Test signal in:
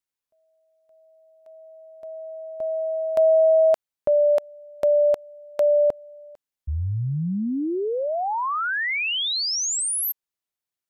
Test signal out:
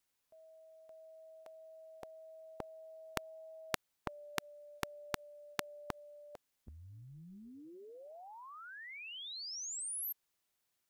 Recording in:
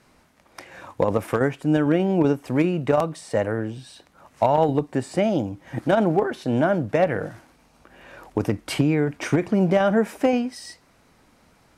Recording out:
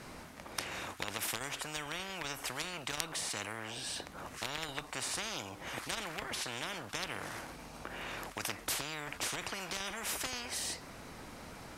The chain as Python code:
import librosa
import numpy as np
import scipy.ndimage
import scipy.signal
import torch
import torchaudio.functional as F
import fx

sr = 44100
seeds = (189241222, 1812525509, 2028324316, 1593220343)

y = fx.spectral_comp(x, sr, ratio=10.0)